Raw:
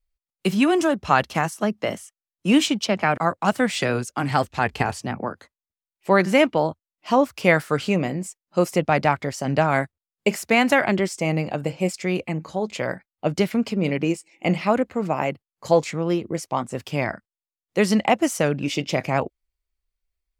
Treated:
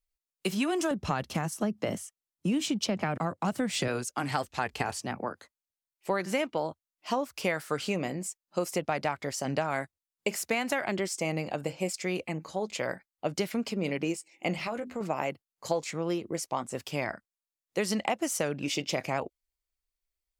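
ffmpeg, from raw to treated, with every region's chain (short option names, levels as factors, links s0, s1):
-filter_complex "[0:a]asettb=1/sr,asplit=3[s0][s1][s2];[s0]atrim=end=0.914[s3];[s1]atrim=start=0.91:end=3.88,asetpts=PTS-STARTPTS,afade=t=in:d=0.004:c=qsin,afade=t=out:st=2.966:d=0.004:c=qsin,equalizer=f=130:w=0.41:g=13.5,acompressor=threshold=0.0794:ratio=1.5:attack=3.2:release=140:knee=1:detection=peak[s4];[s2]atrim=start=3.876[s5];[s3][s4]acrossfade=d=0.004:c1=hsin:c2=qsin[s6];[s6][s5]acrossfade=d=0.004:c1=qsin:c2=hsin,asettb=1/sr,asplit=3[s7][s8][s9];[s7]atrim=end=14.564[s10];[s8]atrim=start=14.56:end=15.01,asetpts=PTS-STARTPTS,afade=t=in:d=0.004:c=qsin,afade=t=out:st=0.446:d=0.004:c=qsin,bandreject=f=50:t=h:w=6,bandreject=f=100:t=h:w=6,bandreject=f=150:t=h:w=6,bandreject=f=200:t=h:w=6,bandreject=f=250:t=h:w=6,bandreject=f=300:t=h:w=6,bandreject=f=350:t=h:w=6,bandreject=f=400:t=h:w=6,asplit=2[s11][s12];[s12]adelay=13,volume=0.473[s13];[s11][s13]amix=inputs=2:normalize=0,atrim=end_sample=19845,acompressor=threshold=0.0631:ratio=6:attack=3.2:release=140:knee=1:detection=peak[s14];[s9]atrim=start=15.006[s15];[s10][s14]acrossfade=d=0.004:c1=hsin:c2=qsin[s16];[s16][s15]acrossfade=d=0.004:c1=qsin:c2=hsin,bass=f=250:g=-5,treble=f=4000:g=5,acompressor=threshold=0.1:ratio=6,volume=0.562"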